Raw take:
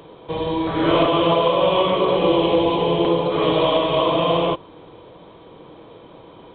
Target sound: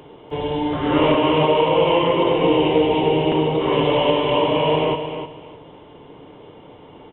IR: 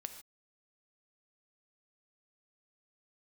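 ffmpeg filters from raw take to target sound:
-filter_complex "[0:a]asplit=2[link_01][link_02];[link_02]aecho=0:1:279|558|837:0.355|0.0781|0.0172[link_03];[link_01][link_03]amix=inputs=2:normalize=0,asetrate=40517,aresample=44100"

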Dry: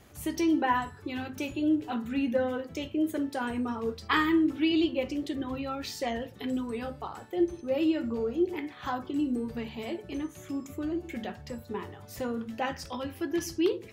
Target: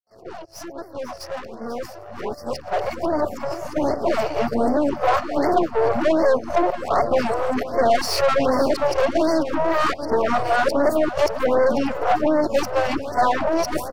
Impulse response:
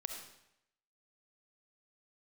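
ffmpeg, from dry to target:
-filter_complex "[0:a]areverse,asplit=4[link_01][link_02][link_03][link_04];[link_02]asetrate=22050,aresample=44100,atempo=2,volume=-17dB[link_05];[link_03]asetrate=37084,aresample=44100,atempo=1.18921,volume=-17dB[link_06];[link_04]asetrate=88200,aresample=44100,atempo=0.5,volume=-16dB[link_07];[link_01][link_05][link_06][link_07]amix=inputs=4:normalize=0,acompressor=threshold=-33dB:ratio=12,superequalizer=7b=1.41:8b=3.98:10b=2:13b=0.316:14b=2.51,aeval=exprs='(tanh(70.8*val(0)+0.8)-tanh(0.8))/70.8':channel_layout=same,agate=range=-13dB:threshold=-40dB:ratio=16:detection=peak,asplit=2[link_08][link_09];[link_09]aecho=0:1:1166|2332|3498:0.126|0.0428|0.0146[link_10];[link_08][link_10]amix=inputs=2:normalize=0,alimiter=level_in=14dB:limit=-24dB:level=0:latency=1:release=22,volume=-14dB,equalizer=frequency=730:width=0.67:gain=7.5,asplit=2[link_11][link_12];[link_12]aecho=0:1:491:0.211[link_13];[link_11][link_13]amix=inputs=2:normalize=0,dynaudnorm=framelen=840:gausssize=7:maxgain=14dB,afftfilt=real='re*(1-between(b*sr/1024,210*pow(3100/210,0.5+0.5*sin(2*PI*1.3*pts/sr))/1.41,210*pow(3100/210,0.5+0.5*sin(2*PI*1.3*pts/sr))*1.41))':imag='im*(1-between(b*sr/1024,210*pow(3100/210,0.5+0.5*sin(2*PI*1.3*pts/sr))/1.41,210*pow(3100/210,0.5+0.5*sin(2*PI*1.3*pts/sr))*1.41))':win_size=1024:overlap=0.75,volume=8.5dB"

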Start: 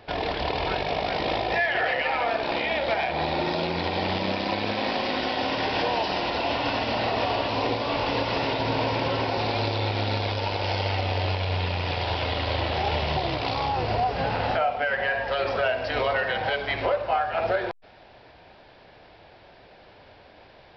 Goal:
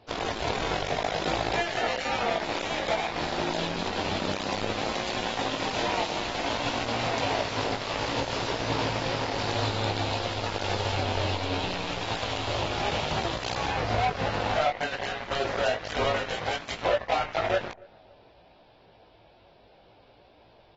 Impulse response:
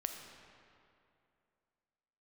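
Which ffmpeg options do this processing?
-filter_complex "[0:a]equalizer=frequency=1800:width_type=o:width=0.73:gain=-8,asplit=2[link_01][link_02];[link_02]acompressor=threshold=-39dB:ratio=5,volume=-3dB[link_03];[link_01][link_03]amix=inputs=2:normalize=0,aeval=exprs='0.211*(cos(1*acos(clip(val(0)/0.211,-1,1)))-cos(1*PI/2))+0.00211*(cos(3*acos(clip(val(0)/0.211,-1,1)))-cos(3*PI/2))+0.00668*(cos(6*acos(clip(val(0)/0.211,-1,1)))-cos(6*PI/2))+0.0422*(cos(7*acos(clip(val(0)/0.211,-1,1)))-cos(7*PI/2))+0.00596*(cos(8*acos(clip(val(0)/0.211,-1,1)))-cos(8*PI/2))':channel_layout=same,flanger=delay=17:depth=2.7:speed=0.59,asplit=2[link_04][link_05];[link_05]adelay=277,lowpass=frequency=980:poles=1,volume=-23dB,asplit=2[link_06][link_07];[link_07]adelay=277,lowpass=frequency=980:poles=1,volume=0.49,asplit=2[link_08][link_09];[link_09]adelay=277,lowpass=frequency=980:poles=1,volume=0.49[link_10];[link_04][link_06][link_08][link_10]amix=inputs=4:normalize=0" -ar 44100 -c:a aac -b:a 24k

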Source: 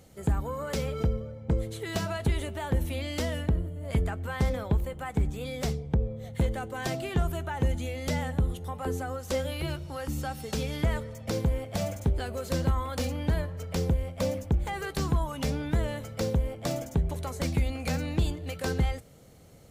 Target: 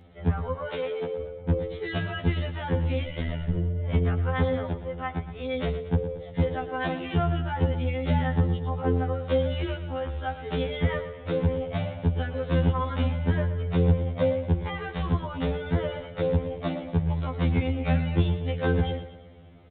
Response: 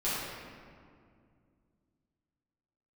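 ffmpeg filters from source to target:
-filter_complex "[0:a]asettb=1/sr,asplit=3[link_01][link_02][link_03];[link_01]atrim=end=0.544[link_04];[link_02]atrim=start=0.54:end=1.2,asetpts=PTS-STARTPTS,afade=type=in:duration=0.004:curve=qsin,afade=type=out:start_time=0.656:duration=0.004:curve=qsin,highpass=360[link_05];[link_03]atrim=start=1.196[link_06];[link_04][link_05]acrossfade=duration=0.004:curve1=hsin:curve2=qsin[link_07];[link_07][link_06]acrossfade=duration=0.004:curve1=qsin:curve2=hsin,asettb=1/sr,asplit=3[link_08][link_09][link_10];[link_08]atrim=end=3.044[link_11];[link_09]atrim=start=3.04:end=3.55,asetpts=PTS-STARTPTS,afade=type=in:duration=0.004:curve=qsin,afade=type=out:start_time=0.506:duration=0.004:curve=qsin,tremolo=f=79:d=0.974[link_12];[link_10]atrim=start=3.546[link_13];[link_11][link_12]acrossfade=duration=0.004:curve1=hsin:curve2=qsin[link_14];[link_14][link_13]acrossfade=duration=0.004:curve1=qsin:curve2=hsin,asettb=1/sr,asplit=3[link_15][link_16][link_17];[link_15]atrim=end=4.614[link_18];[link_16]atrim=start=4.61:end=5.37,asetpts=PTS-STARTPTS,afade=type=in:duration=0.004:curve=qsin,afade=type=out:start_time=0.756:duration=0.004:curve=qsin,acompressor=threshold=-30dB:ratio=6[link_19];[link_17]atrim=start=5.366[link_20];[link_18][link_19]acrossfade=duration=0.004:curve1=hsin:curve2=qsin[link_21];[link_21][link_20]acrossfade=duration=0.004:curve1=qsin:curve2=hsin,asplit=2[link_22][link_23];[link_23]aecho=0:1:116|232|348|464|580:0.251|0.116|0.0532|0.0244|0.0112[link_24];[link_22][link_24]amix=inputs=2:normalize=0,aresample=8000,aresample=44100,afftfilt=real='re*2*eq(mod(b,4),0)':imag='im*2*eq(mod(b,4),0)':win_size=2048:overlap=0.75,volume=4.5dB"

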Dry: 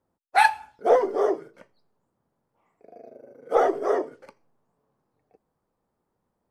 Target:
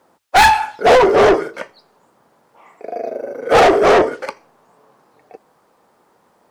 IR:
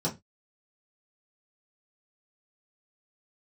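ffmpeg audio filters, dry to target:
-filter_complex "[0:a]asplit=2[link_01][link_02];[link_02]highpass=frequency=720:poles=1,volume=30dB,asoftclip=type=tanh:threshold=-4.5dB[link_03];[link_01][link_03]amix=inputs=2:normalize=0,lowpass=frequency=6200:poles=1,volume=-6dB,bandreject=frequency=50:width_type=h:width=6,bandreject=frequency=100:width_type=h:width=6,volume=2dB"

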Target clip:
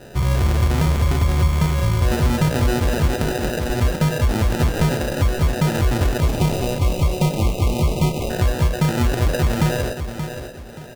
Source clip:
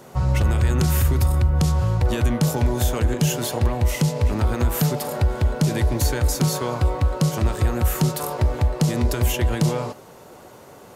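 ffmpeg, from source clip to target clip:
ffmpeg -i in.wav -filter_complex "[0:a]asettb=1/sr,asplit=3[link_01][link_02][link_03];[link_01]atrim=end=3.164[link_04];[link_02]atrim=start=3.16:end=3.7,asetpts=PTS-STARTPTS,afade=type=in:duration=0.004:curve=qsin,afade=type=out:start_time=0.536:duration=0.004:curve=qsin,highpass=260[link_05];[link_03]atrim=start=3.696[link_06];[link_04][link_05]acrossfade=duration=0.004:curve1=hsin:curve2=qsin[link_07];[link_07][link_06]acrossfade=duration=0.004:curve1=qsin:curve2=hsin,asplit=2[link_08][link_09];[link_09]alimiter=limit=-18dB:level=0:latency=1:release=37,volume=-1dB[link_10];[link_08][link_10]amix=inputs=2:normalize=0,acrusher=samples=40:mix=1:aa=0.000001,asettb=1/sr,asplit=3[link_11][link_12][link_13];[link_11]atrim=end=6.204[link_14];[link_12]atrim=start=6.2:end=8.3,asetpts=PTS-STARTPTS,afade=type=in:duration=0.004:curve=qsin,afade=type=out:start_time=2.096:duration=0.004:curve=qsin,asuperstop=centerf=1600:order=20:qfactor=2[link_15];[link_13]atrim=start=8.296[link_16];[link_14][link_15]acrossfade=duration=0.004:curve1=hsin:curve2=qsin[link_17];[link_17][link_16]acrossfade=duration=0.004:curve1=qsin:curve2=hsin,aecho=1:1:578|1156|1734:0.355|0.106|0.0319,volume=-2dB" out.wav

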